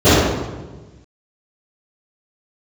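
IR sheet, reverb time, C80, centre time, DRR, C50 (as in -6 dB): 1.3 s, -0.5 dB, 112 ms, -23.0 dB, -4.0 dB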